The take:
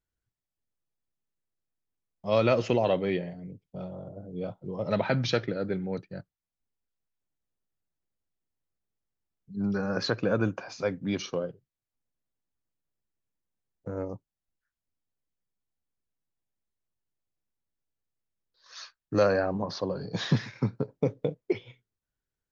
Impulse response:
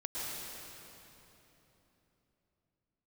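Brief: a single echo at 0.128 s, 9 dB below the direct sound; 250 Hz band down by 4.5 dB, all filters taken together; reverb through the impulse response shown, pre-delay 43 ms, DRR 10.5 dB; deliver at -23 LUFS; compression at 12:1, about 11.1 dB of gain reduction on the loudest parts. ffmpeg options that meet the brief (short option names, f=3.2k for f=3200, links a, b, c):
-filter_complex "[0:a]equalizer=f=250:t=o:g=-6.5,acompressor=threshold=-31dB:ratio=12,aecho=1:1:128:0.355,asplit=2[a][b];[1:a]atrim=start_sample=2205,adelay=43[c];[b][c]afir=irnorm=-1:irlink=0,volume=-14dB[d];[a][d]amix=inputs=2:normalize=0,volume=14.5dB"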